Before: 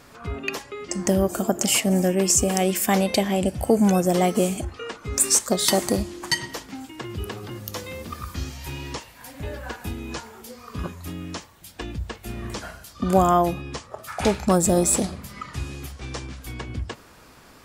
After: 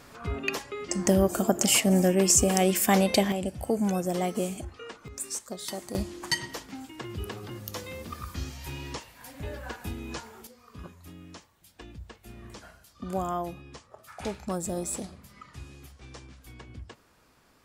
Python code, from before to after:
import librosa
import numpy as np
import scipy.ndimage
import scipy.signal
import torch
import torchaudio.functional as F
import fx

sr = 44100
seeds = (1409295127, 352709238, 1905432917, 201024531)

y = fx.gain(x, sr, db=fx.steps((0.0, -1.5), (3.32, -8.5), (5.08, -16.0), (5.95, -4.5), (10.47, -13.0)))